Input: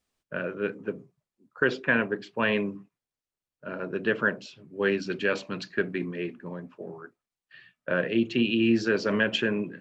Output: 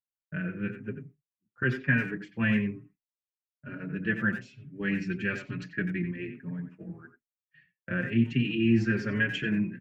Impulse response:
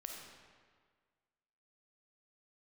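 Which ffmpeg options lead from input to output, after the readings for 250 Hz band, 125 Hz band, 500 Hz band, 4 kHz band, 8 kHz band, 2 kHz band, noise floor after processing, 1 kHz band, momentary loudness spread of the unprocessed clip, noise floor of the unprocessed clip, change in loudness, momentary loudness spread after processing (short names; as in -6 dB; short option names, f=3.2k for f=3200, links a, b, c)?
0.0 dB, +7.0 dB, -10.0 dB, -7.5 dB, n/a, -2.5 dB, under -85 dBFS, -8.5 dB, 18 LU, under -85 dBFS, -2.0 dB, 16 LU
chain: -filter_complex "[0:a]lowshelf=f=300:g=9,asplit=2[a][b];[b]adelay=90,highpass=300,lowpass=3.4k,asoftclip=type=hard:threshold=-17dB,volume=-9dB[c];[a][c]amix=inputs=2:normalize=0,agate=range=-33dB:threshold=-43dB:ratio=3:detection=peak,equalizer=f=125:t=o:w=1:g=8,equalizer=f=500:t=o:w=1:g=-10,equalizer=f=1k:t=o:w=1:g=-10,equalizer=f=2k:t=o:w=1:g=10,equalizer=f=4k:t=o:w=1:g=-11,asplit=2[d][e];[e]adelay=5.1,afreqshift=1.1[f];[d][f]amix=inputs=2:normalize=1,volume=-2dB"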